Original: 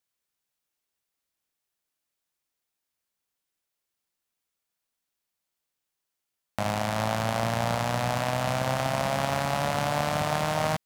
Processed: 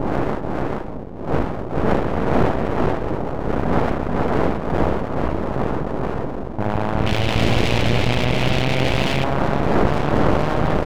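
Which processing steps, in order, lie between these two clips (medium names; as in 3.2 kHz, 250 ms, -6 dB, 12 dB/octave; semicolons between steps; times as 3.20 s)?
square wave that keeps the level; wind noise 590 Hz -20 dBFS; level-controlled noise filter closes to 420 Hz, open at -10 dBFS; tape spacing loss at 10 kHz 26 dB; delay 434 ms -4.5 dB; half-wave rectifier; 7.06–9.24 s: resonant high shelf 1.9 kHz +11 dB, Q 1.5; level flattener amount 50%; trim -2 dB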